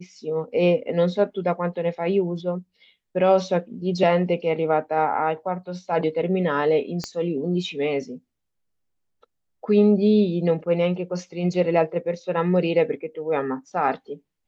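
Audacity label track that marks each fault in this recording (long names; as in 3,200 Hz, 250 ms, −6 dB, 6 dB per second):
7.040000	7.040000	click −15 dBFS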